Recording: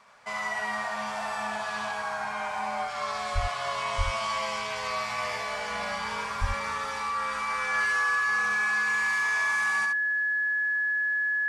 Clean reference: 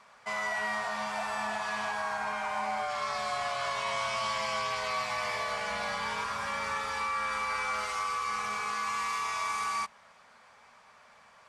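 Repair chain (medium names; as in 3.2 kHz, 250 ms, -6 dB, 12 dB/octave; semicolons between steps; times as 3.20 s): band-stop 1.7 kHz, Q 30; de-plosive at 3.34/3.97/6.40 s; inverse comb 70 ms -5 dB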